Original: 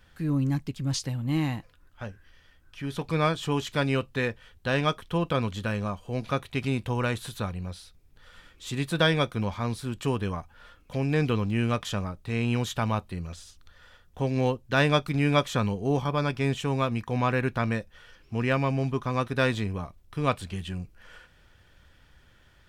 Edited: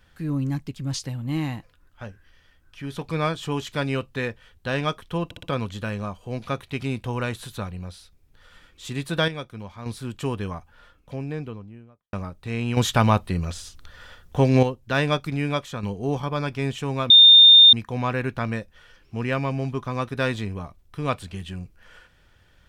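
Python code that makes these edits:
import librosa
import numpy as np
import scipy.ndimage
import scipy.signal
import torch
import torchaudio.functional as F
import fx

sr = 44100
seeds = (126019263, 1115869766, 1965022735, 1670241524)

y = fx.studio_fade_out(x, sr, start_s=10.38, length_s=1.57)
y = fx.edit(y, sr, fx.stutter(start_s=5.25, slice_s=0.06, count=4),
    fx.clip_gain(start_s=9.1, length_s=0.58, db=-8.5),
    fx.clip_gain(start_s=12.59, length_s=1.86, db=9.0),
    fx.fade_out_to(start_s=15.08, length_s=0.57, floor_db=-7.5),
    fx.insert_tone(at_s=16.92, length_s=0.63, hz=3630.0, db=-7.0), tone=tone)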